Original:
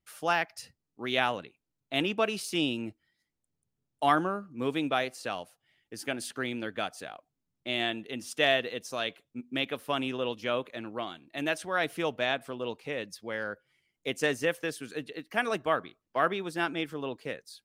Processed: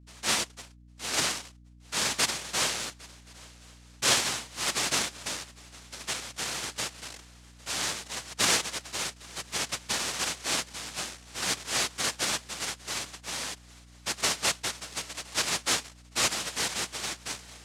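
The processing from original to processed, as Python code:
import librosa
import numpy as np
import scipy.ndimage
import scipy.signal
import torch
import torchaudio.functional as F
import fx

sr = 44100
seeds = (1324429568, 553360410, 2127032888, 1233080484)

y = fx.noise_vocoder(x, sr, seeds[0], bands=1)
y = fx.echo_swing(y, sr, ms=1075, ratio=3, feedback_pct=31, wet_db=-23.5)
y = fx.add_hum(y, sr, base_hz=60, snr_db=21)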